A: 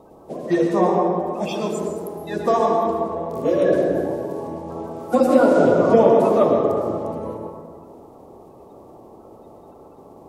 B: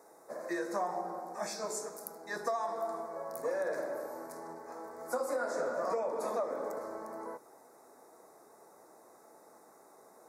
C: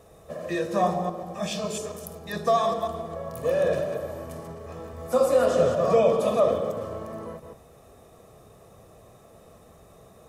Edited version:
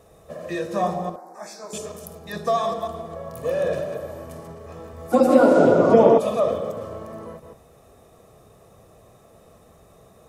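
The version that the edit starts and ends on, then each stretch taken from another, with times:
C
0:01.16–0:01.73: punch in from B
0:05.12–0:06.18: punch in from A

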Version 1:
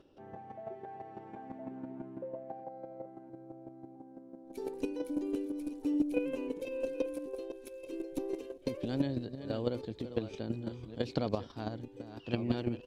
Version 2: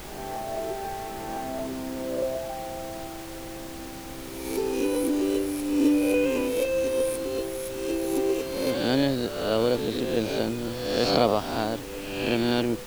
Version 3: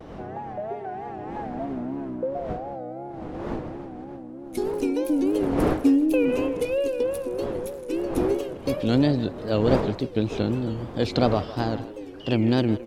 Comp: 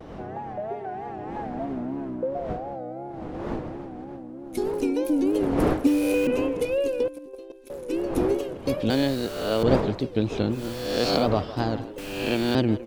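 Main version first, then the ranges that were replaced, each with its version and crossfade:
3
0:05.87–0:06.27: punch in from 2
0:07.08–0:07.70: punch in from 1
0:08.90–0:09.63: punch in from 2
0:10.57–0:11.23: punch in from 2, crossfade 0.16 s
0:11.98–0:12.55: punch in from 2

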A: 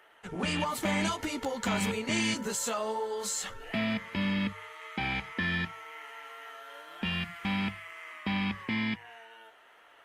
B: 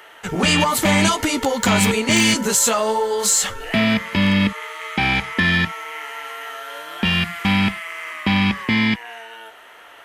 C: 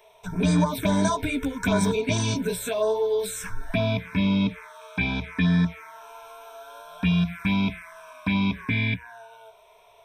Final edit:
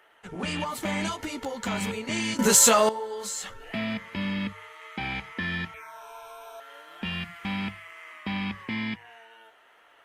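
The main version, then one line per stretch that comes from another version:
A
0:02.39–0:02.89: punch in from B
0:05.74–0:06.60: punch in from C

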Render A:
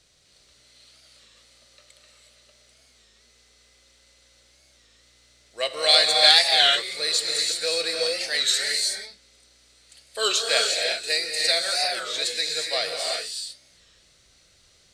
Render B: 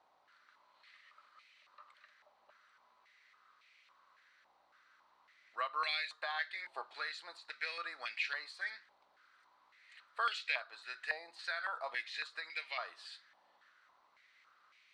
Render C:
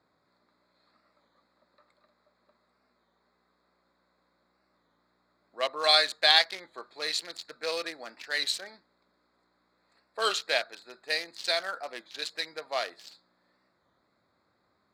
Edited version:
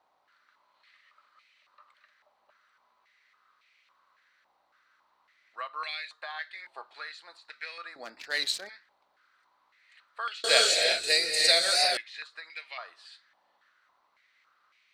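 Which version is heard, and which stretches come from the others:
B
0:07.96–0:08.69: punch in from C
0:10.44–0:11.97: punch in from A

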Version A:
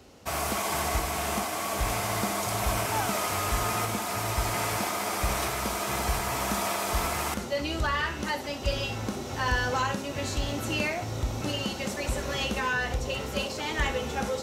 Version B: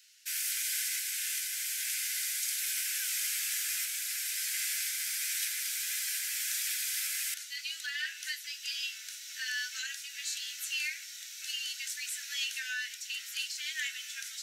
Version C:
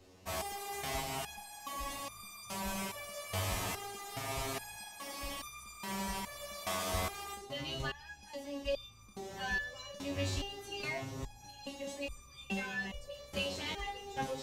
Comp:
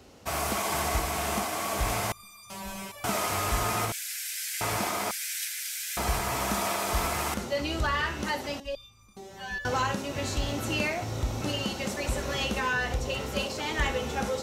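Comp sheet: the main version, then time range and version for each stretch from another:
A
0:02.12–0:03.04: punch in from C
0:03.92–0:04.61: punch in from B
0:05.11–0:05.97: punch in from B
0:08.60–0:09.65: punch in from C

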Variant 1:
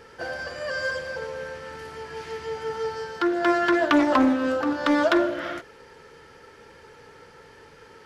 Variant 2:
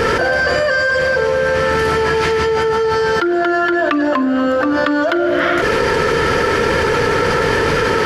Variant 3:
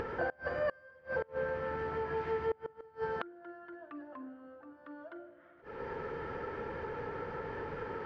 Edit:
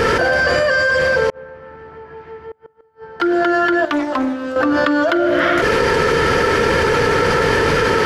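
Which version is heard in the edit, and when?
2
0:01.30–0:03.20: punch in from 3
0:03.85–0:04.56: punch in from 1

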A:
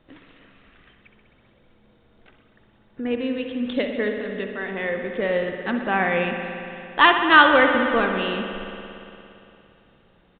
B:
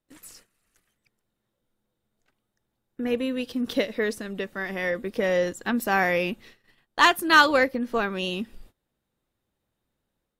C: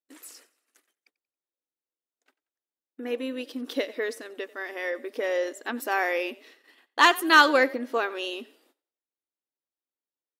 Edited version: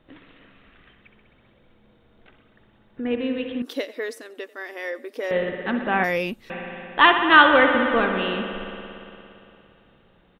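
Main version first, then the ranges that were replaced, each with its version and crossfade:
A
0:03.62–0:05.31: punch in from C
0:06.04–0:06.50: punch in from B

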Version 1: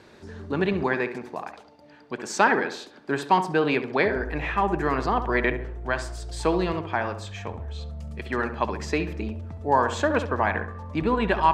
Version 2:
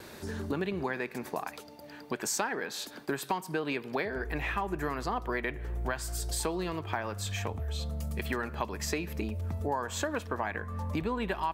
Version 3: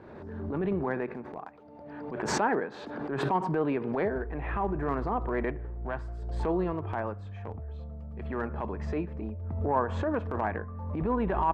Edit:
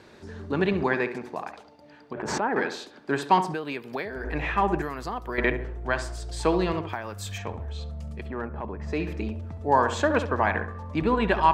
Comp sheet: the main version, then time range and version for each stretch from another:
1
0:02.13–0:02.56: punch in from 3
0:03.54–0:04.24: punch in from 2
0:04.82–0:05.38: punch in from 2
0:06.89–0:07.38: punch in from 2
0:08.22–0:08.97: punch in from 3, crossfade 0.24 s

